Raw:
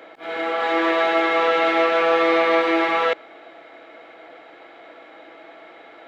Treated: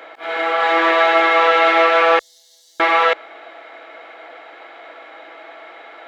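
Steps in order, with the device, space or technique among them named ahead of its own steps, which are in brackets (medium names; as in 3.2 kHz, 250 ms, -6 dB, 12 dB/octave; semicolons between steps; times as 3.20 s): filter by subtraction (in parallel: low-pass 1 kHz 12 dB/octave + polarity flip); 2.19–2.80 s: on the sum: inverse Chebyshev band-stop 120–2600 Hz, stop band 50 dB; trim +5 dB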